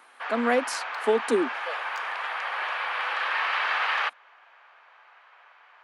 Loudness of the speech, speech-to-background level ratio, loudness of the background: -27.0 LUFS, 1.5 dB, -28.5 LUFS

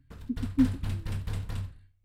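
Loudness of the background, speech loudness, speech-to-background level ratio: -36.5 LUFS, -30.5 LUFS, 6.0 dB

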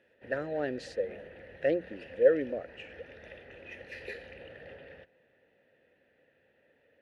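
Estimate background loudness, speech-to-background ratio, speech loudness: -48.0 LUFS, 17.0 dB, -31.0 LUFS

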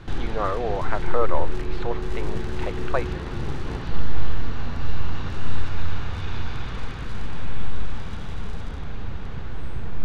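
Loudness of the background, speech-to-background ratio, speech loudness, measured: -33.0 LUFS, 2.5 dB, -30.5 LUFS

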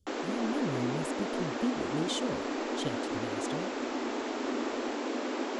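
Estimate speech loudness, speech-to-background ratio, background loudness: -37.5 LUFS, -3.5 dB, -34.0 LUFS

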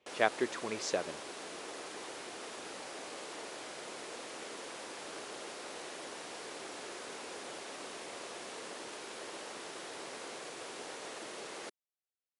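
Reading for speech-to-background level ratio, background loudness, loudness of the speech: 9.0 dB, -44.0 LUFS, -35.0 LUFS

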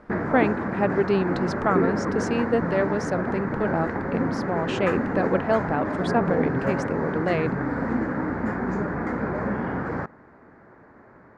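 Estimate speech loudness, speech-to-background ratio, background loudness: -26.5 LUFS, 0.5 dB, -27.0 LUFS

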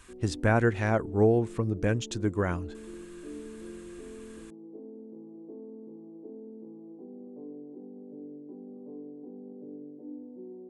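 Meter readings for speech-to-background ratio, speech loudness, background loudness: 17.5 dB, -27.5 LUFS, -45.0 LUFS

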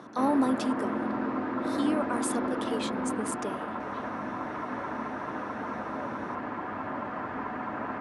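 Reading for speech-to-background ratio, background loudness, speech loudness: 1.5 dB, -33.5 LUFS, -32.0 LUFS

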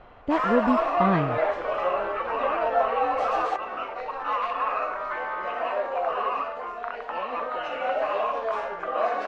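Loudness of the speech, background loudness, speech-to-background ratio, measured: -26.0 LUFS, -27.0 LUFS, 1.0 dB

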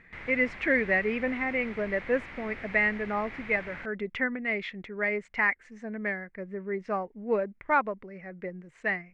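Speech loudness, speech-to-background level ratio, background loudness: -29.5 LUFS, 13.0 dB, -42.5 LUFS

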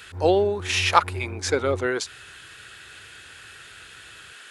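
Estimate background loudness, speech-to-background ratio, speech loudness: -36.0 LUFS, 13.0 dB, -23.0 LUFS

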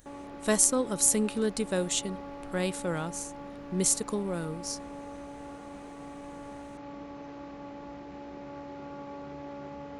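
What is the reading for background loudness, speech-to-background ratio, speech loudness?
-43.0 LUFS, 14.5 dB, -28.5 LUFS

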